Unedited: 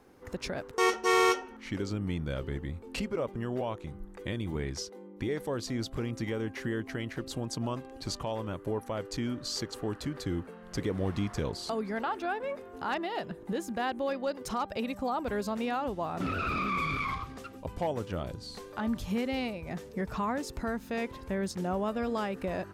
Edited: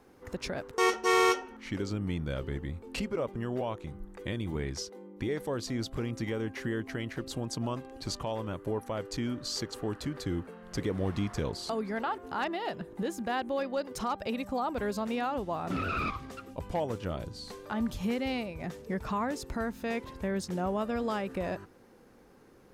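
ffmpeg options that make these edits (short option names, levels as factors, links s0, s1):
-filter_complex "[0:a]asplit=3[s0][s1][s2];[s0]atrim=end=12.182[s3];[s1]atrim=start=12.678:end=16.602[s4];[s2]atrim=start=17.168[s5];[s3][s4]acrossfade=d=0.004:c1=hsin:c2=hsin[s6];[s6][s5]acrossfade=d=0.004:c1=hsin:c2=hsin"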